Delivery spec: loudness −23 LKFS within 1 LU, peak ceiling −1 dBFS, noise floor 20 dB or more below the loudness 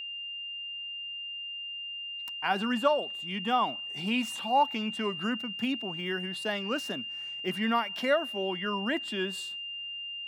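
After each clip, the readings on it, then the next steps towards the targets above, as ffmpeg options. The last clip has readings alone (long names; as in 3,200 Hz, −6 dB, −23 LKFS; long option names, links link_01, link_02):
interfering tone 2,800 Hz; level of the tone −36 dBFS; integrated loudness −31.0 LKFS; sample peak −13.0 dBFS; target loudness −23.0 LKFS
→ -af "bandreject=frequency=2800:width=30"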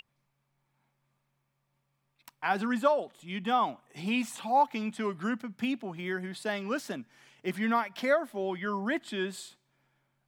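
interfering tone none found; integrated loudness −31.5 LKFS; sample peak −13.0 dBFS; target loudness −23.0 LKFS
→ -af "volume=8.5dB"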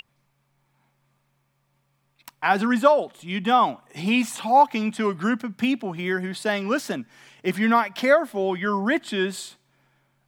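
integrated loudness −23.0 LKFS; sample peak −4.5 dBFS; background noise floor −70 dBFS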